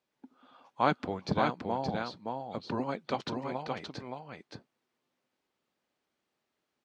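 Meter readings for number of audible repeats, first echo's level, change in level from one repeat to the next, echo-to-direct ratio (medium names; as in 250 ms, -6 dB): 1, -4.0 dB, no regular repeats, -4.0 dB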